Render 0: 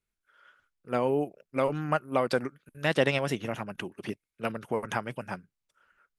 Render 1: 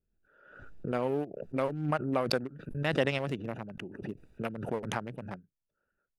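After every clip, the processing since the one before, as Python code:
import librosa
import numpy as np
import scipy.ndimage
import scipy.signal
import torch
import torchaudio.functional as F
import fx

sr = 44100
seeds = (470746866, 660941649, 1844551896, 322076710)

y = fx.wiener(x, sr, points=41)
y = fx.pre_swell(y, sr, db_per_s=58.0)
y = F.gain(torch.from_numpy(y), -3.5).numpy()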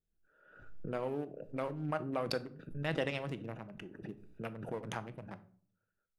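y = fx.room_shoebox(x, sr, seeds[0], volume_m3=500.0, walls='furnished', distance_m=0.62)
y = F.gain(torch.from_numpy(y), -6.5).numpy()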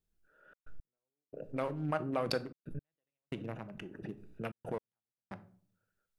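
y = fx.step_gate(x, sr, bpm=113, pattern='xxxx.x....xxxxx', floor_db=-60.0, edge_ms=4.5)
y = F.gain(torch.from_numpy(y), 2.0).numpy()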